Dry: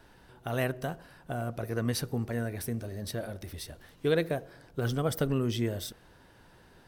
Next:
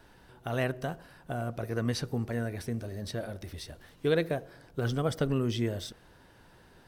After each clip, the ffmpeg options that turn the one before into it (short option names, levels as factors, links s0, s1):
-filter_complex "[0:a]acrossover=split=7800[s0][s1];[s1]acompressor=threshold=0.00141:ratio=4:attack=1:release=60[s2];[s0][s2]amix=inputs=2:normalize=0"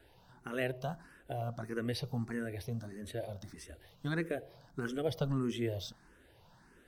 -filter_complex "[0:a]asplit=2[s0][s1];[s1]afreqshift=1.6[s2];[s0][s2]amix=inputs=2:normalize=1,volume=0.794"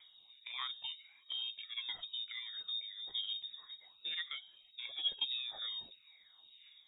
-af "aphaser=in_gain=1:out_gain=1:delay=2:decay=0.67:speed=0.3:type=triangular,lowpass=f=3200:t=q:w=0.5098,lowpass=f=3200:t=q:w=0.6013,lowpass=f=3200:t=q:w=0.9,lowpass=f=3200:t=q:w=2.563,afreqshift=-3800,volume=0.473"